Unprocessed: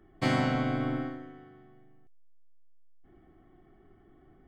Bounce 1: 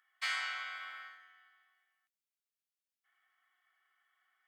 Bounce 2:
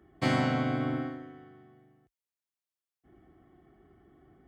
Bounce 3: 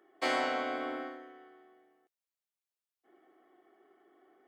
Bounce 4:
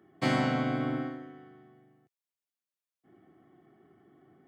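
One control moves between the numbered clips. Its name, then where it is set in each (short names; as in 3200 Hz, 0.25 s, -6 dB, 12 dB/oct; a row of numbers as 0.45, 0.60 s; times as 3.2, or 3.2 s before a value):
HPF, cutoff: 1400, 44, 370, 120 Hz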